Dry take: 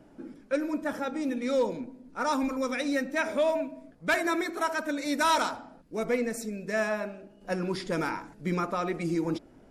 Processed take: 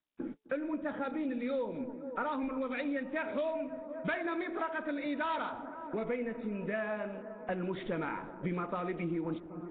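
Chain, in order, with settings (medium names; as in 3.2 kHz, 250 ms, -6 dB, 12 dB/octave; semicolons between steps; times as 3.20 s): gate -43 dBFS, range -49 dB; on a send: feedback echo behind a low-pass 258 ms, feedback 74%, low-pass 1.1 kHz, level -20.5 dB; on the sum: compression 4:1, threshold -39 dBFS, peak gain reduction 14.5 dB; de-hum 434.4 Hz, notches 2; trim +5 dB; Nellymoser 16 kbps 8 kHz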